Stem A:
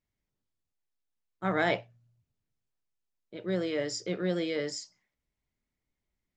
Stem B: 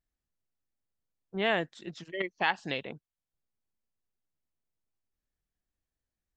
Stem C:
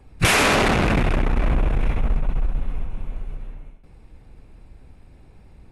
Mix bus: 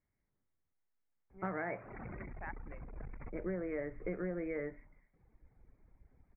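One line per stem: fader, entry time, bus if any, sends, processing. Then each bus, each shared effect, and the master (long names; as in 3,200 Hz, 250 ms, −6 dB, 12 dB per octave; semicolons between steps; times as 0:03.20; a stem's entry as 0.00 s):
+1.5 dB, 0.00 s, no send, no processing
−15.5 dB, 0.00 s, no send, reverb reduction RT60 1.7 s; automatic ducking −7 dB, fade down 0.75 s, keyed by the first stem
−19.5 dB, 1.30 s, no send, reverb reduction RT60 1.4 s; compressor whose output falls as the input rises −26 dBFS, ratio −1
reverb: not used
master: Butterworth low-pass 2,300 Hz 96 dB per octave; downward compressor 8 to 1, threshold −35 dBFS, peak gain reduction 14 dB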